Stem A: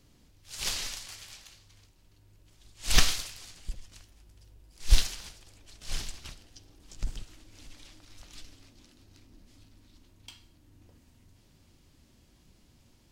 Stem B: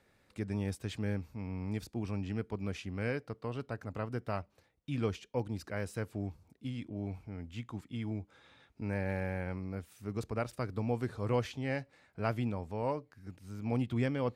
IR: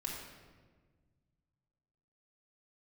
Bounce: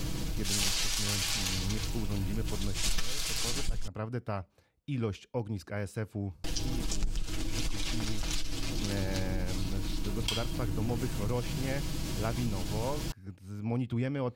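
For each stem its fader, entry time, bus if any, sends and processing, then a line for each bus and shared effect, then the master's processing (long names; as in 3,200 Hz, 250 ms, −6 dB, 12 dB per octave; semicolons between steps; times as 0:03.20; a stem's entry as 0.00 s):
−1.0 dB, 0.00 s, muted 0:03.88–0:06.44, no send, comb filter 6.2 ms, depth 62%; envelope flattener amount 50%
+0.5 dB, 0.00 s, no send, no processing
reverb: not used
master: low-shelf EQ 170 Hz +4 dB; notch filter 1,900 Hz, Q 21; downward compressor 5 to 1, threshold −27 dBFS, peak gain reduction 18 dB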